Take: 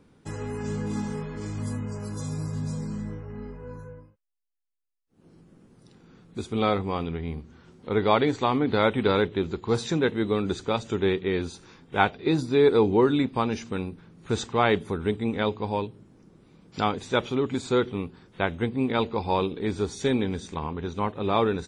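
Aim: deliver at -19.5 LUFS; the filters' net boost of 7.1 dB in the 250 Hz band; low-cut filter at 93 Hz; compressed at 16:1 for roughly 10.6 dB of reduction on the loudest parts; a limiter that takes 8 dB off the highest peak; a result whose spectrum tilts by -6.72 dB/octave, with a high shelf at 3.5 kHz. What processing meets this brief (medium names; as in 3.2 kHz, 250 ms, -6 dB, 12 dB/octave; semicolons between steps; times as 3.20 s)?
high-pass 93 Hz; peaking EQ 250 Hz +9 dB; treble shelf 3.5 kHz -8 dB; compression 16:1, threshold -22 dBFS; trim +11 dB; peak limiter -7.5 dBFS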